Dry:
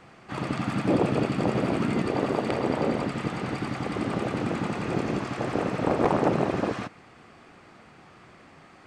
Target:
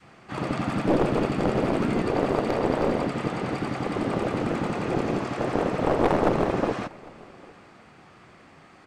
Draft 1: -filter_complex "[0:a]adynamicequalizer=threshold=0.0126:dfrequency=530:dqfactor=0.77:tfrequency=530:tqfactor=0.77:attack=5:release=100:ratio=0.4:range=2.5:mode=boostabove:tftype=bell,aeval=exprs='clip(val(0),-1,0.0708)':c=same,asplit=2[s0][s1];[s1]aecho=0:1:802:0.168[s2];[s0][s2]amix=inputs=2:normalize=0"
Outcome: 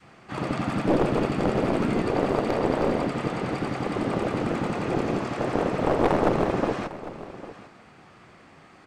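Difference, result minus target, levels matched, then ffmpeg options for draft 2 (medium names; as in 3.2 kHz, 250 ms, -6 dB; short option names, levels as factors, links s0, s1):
echo-to-direct +9 dB
-filter_complex "[0:a]adynamicequalizer=threshold=0.0126:dfrequency=530:dqfactor=0.77:tfrequency=530:tqfactor=0.77:attack=5:release=100:ratio=0.4:range=2.5:mode=boostabove:tftype=bell,aeval=exprs='clip(val(0),-1,0.0708)':c=same,asplit=2[s0][s1];[s1]aecho=0:1:802:0.0596[s2];[s0][s2]amix=inputs=2:normalize=0"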